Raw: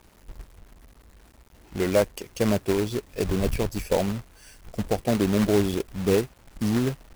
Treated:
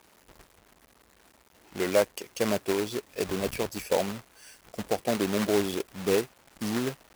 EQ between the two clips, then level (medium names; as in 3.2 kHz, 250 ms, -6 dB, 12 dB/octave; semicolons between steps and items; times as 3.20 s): high-pass 420 Hz 6 dB/octave; 0.0 dB